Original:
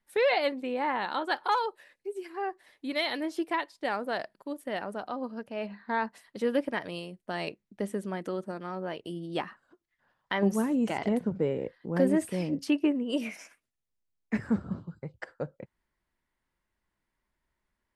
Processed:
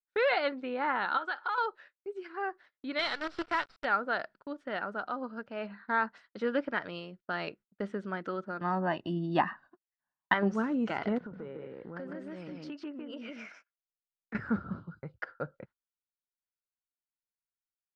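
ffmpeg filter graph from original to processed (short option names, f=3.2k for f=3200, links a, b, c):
-filter_complex "[0:a]asettb=1/sr,asplit=3[a][b][c];[a]atrim=end=1.174[d];[b]atrim=start=1.17:end=1.58,asetpts=PTS-STARTPTS,afade=t=in:d=0.004:c=qsin,afade=t=out:st=0.406:d=0.004:c=qsin,highpass=f=600:p=1,acompressor=threshold=-33dB:ratio=3:attack=3.2:release=140:knee=1:detection=peak[e];[c]atrim=start=1.576[f];[d][e]acrossfade=d=0.004:c1=hsin:c2=qsin[g];[g][f]acrossfade=d=0.004:c1=qsin:c2=hsin,asettb=1/sr,asplit=3[h][i][j];[h]atrim=end=2.994[k];[i]atrim=start=2.99:end=3.85,asetpts=PTS-STARTPTS,afade=t=in:d=0.004:c=qsin,afade=t=out:st=0.856:d=0.004:c=qsin,bass=f=250:g=-14,treble=f=4k:g=5,acrusher=bits=6:dc=4:mix=0:aa=0.000001,bandreject=f=6.5k:w=6.4[l];[j]atrim=start=3.846[m];[k][l]acrossfade=d=0.004:c1=hsin:c2=qsin[n];[n][m]acrossfade=d=0.004:c1=qsin:c2=hsin,asettb=1/sr,asplit=3[o][p][q];[o]atrim=end=8.614[r];[p]atrim=start=8.61:end=10.34,asetpts=PTS-STARTPTS,afade=t=in:d=0.004:c=qsin,afade=t=out:st=1.726:d=0.004:c=qsin,equalizer=f=380:w=0.39:g=9,aecho=1:1:1.1:0.92,atrim=end_sample=76293[s];[q]atrim=start=10.336[t];[r][s]acrossfade=d=0.004:c1=hsin:c2=qsin[u];[u][t]acrossfade=d=0.004:c1=qsin:c2=hsin,asettb=1/sr,asplit=3[v][w][x];[v]atrim=end=11.184[y];[w]atrim=start=11.18:end=14.35,asetpts=PTS-STARTPTS,afade=t=in:d=0.004:c=qsin,afade=t=out:st=3.166:d=0.004:c=qsin,bass=f=250:g=-3,treble=f=4k:g=-2,aecho=1:1:152:0.668,atrim=end_sample=139797,acompressor=threshold=-37dB:ratio=4:attack=3.2:release=140:knee=1:detection=peak[z];[x]atrim=start=14.346[aa];[y][z]acrossfade=d=0.004:c1=hsin:c2=qsin[ab];[ab][aa]acrossfade=d=0.004:c1=qsin:c2=hsin,lowpass=f=5k:w=0.5412,lowpass=f=5k:w=1.3066,equalizer=f=1.4k:t=o:w=0.4:g=14,agate=range=-29dB:threshold=-49dB:ratio=16:detection=peak,volume=-3.5dB"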